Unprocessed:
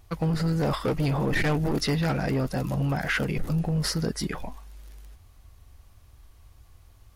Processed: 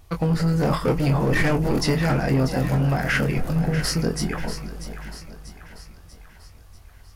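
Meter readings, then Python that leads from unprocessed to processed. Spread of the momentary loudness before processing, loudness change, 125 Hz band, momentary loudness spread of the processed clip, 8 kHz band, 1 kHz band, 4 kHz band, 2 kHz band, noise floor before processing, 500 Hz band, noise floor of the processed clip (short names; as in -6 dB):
4 LU, +4.5 dB, +5.0 dB, 15 LU, +4.5 dB, +4.5 dB, +2.5 dB, +4.5 dB, -55 dBFS, +5.0 dB, -48 dBFS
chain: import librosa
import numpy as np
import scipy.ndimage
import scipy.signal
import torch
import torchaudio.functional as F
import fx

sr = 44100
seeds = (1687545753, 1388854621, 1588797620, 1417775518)

y = fx.dynamic_eq(x, sr, hz=3700.0, q=3.5, threshold_db=-52.0, ratio=4.0, max_db=-7)
y = fx.doubler(y, sr, ms=23.0, db=-7)
y = fx.echo_split(y, sr, split_hz=700.0, low_ms=418, high_ms=640, feedback_pct=52, wet_db=-11.0)
y = y * 10.0 ** (3.5 / 20.0)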